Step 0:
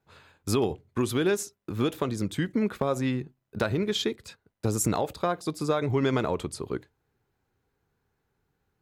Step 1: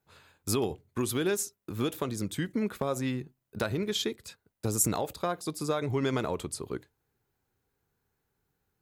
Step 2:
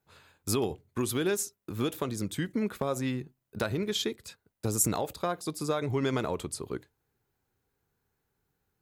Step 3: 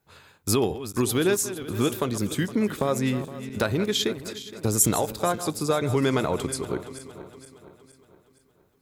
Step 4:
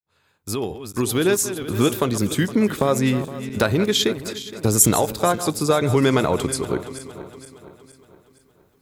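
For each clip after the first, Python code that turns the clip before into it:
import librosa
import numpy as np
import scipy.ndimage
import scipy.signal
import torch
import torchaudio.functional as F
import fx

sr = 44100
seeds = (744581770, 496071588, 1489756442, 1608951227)

y1 = fx.high_shelf(x, sr, hz=6900.0, db=11.0)
y1 = F.gain(torch.from_numpy(y1), -4.0).numpy()
y2 = y1
y3 = fx.reverse_delay_fb(y2, sr, ms=233, feedback_pct=66, wet_db=-13.0)
y3 = F.gain(torch.from_numpy(y3), 6.0).numpy()
y4 = fx.fade_in_head(y3, sr, length_s=1.59)
y4 = F.gain(torch.from_numpy(y4), 5.5).numpy()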